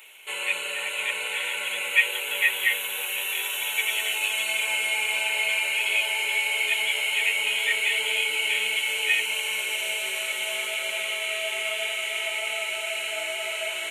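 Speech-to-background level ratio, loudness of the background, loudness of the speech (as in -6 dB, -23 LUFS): -2.0 dB, -25.5 LUFS, -27.5 LUFS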